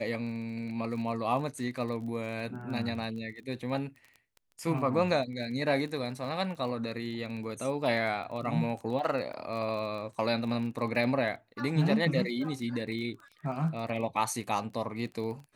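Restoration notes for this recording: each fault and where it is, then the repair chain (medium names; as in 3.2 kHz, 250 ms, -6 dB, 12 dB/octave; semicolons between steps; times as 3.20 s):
crackle 24 per s -39 dBFS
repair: de-click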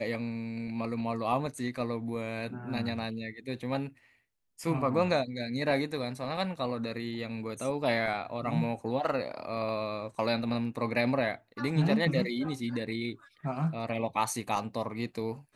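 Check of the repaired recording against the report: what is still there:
nothing left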